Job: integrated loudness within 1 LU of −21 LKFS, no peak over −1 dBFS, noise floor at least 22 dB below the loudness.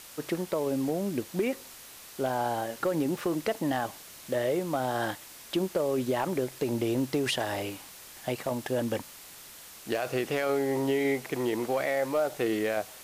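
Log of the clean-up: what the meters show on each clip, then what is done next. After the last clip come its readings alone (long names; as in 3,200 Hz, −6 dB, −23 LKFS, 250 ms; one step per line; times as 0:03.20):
share of clipped samples 0.3%; peaks flattened at −19.5 dBFS; background noise floor −48 dBFS; target noise floor −53 dBFS; integrated loudness −30.5 LKFS; sample peak −19.5 dBFS; target loudness −21.0 LKFS
→ clipped peaks rebuilt −19.5 dBFS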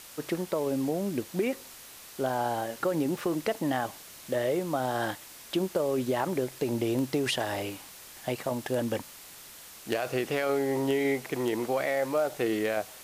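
share of clipped samples 0.0%; background noise floor −48 dBFS; target noise floor −52 dBFS
→ broadband denoise 6 dB, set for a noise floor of −48 dBFS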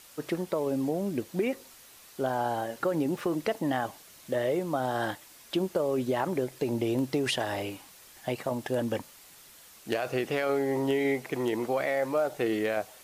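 background noise floor −53 dBFS; integrated loudness −30.5 LKFS; sample peak −13.0 dBFS; target loudness −21.0 LKFS
→ level +9.5 dB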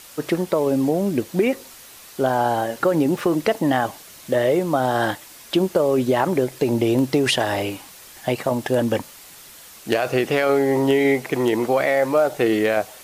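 integrated loudness −21.0 LKFS; sample peak −3.5 dBFS; background noise floor −44 dBFS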